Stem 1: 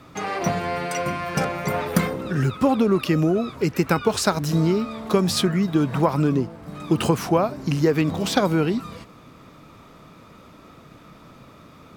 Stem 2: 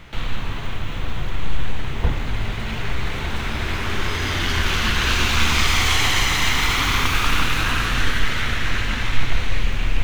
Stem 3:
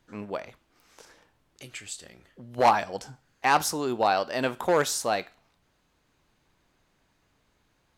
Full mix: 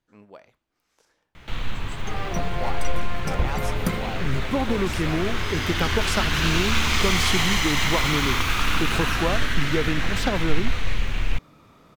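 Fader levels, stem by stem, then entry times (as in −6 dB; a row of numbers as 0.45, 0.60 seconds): −6.0, −3.5, −12.5 decibels; 1.90, 1.35, 0.00 seconds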